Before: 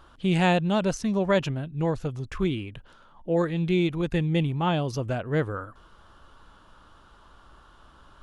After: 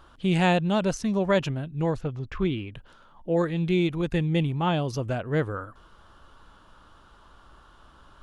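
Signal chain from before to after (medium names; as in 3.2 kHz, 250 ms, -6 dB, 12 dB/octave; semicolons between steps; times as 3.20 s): 2.00–2.74 s: low-pass 3.2 kHz -> 5.4 kHz 12 dB/octave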